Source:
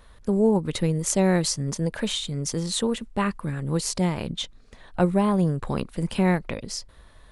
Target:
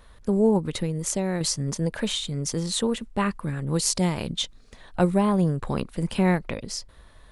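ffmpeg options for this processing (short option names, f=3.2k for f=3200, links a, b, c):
-filter_complex "[0:a]asettb=1/sr,asplit=3[a][b][c];[a]atrim=end=0.674[d];[b]atrim=start=0.67:end=1.41,asetpts=PTS-STARTPTS,afade=t=in:d=0.004:c=qsin,afade=t=out:st=0.736:d=0.004:c=qsin,acompressor=threshold=-25dB:ratio=2.5[e];[c]atrim=start=1.406[f];[d][e]acrossfade=d=0.004:c1=hsin:c2=qsin[g];[g][f]acrossfade=d=0.004:c1=qsin:c2=hsin,asettb=1/sr,asplit=3[h][i][j];[h]atrim=end=3.654[k];[i]atrim=start=3.65:end=5.18,asetpts=PTS-STARTPTS,afade=t=in:d=0.004:c=qsin,afade=t=out:st=1.526:d=0.004:c=qsin,adynamicequalizer=threshold=0.00562:dfrequency=3100:dqfactor=0.7:tfrequency=3100:tqfactor=0.7:attack=5:release=100:ratio=0.375:range=2.5:mode=boostabove:tftype=highshelf[l];[j]atrim=start=5.176[m];[k][l]acrossfade=d=0.004:c1=hsin:c2=qsin[n];[n][m]acrossfade=d=0.004:c1=qsin:c2=hsin"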